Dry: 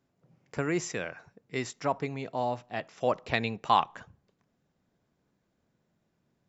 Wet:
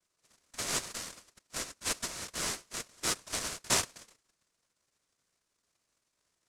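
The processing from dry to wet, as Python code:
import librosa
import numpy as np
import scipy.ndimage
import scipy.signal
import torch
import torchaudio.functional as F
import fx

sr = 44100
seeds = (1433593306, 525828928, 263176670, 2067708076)

y = fx.noise_vocoder(x, sr, seeds[0], bands=1)
y = fx.peak_eq(y, sr, hz=2700.0, db=-13.0, octaves=0.77)
y = y * np.sin(2.0 * np.pi * 820.0 * np.arange(len(y)) / sr)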